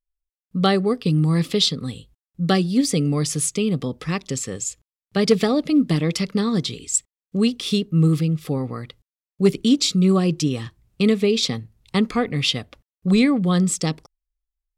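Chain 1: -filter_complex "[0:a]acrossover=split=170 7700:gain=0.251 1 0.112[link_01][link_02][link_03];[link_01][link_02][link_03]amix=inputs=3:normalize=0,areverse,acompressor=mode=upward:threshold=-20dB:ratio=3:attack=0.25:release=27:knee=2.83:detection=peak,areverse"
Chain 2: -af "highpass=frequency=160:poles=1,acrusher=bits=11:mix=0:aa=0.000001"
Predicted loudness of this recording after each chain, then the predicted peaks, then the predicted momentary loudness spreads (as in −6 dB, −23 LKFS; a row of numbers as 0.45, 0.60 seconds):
−22.5, −22.0 LKFS; −4.0, −4.5 dBFS; 11, 11 LU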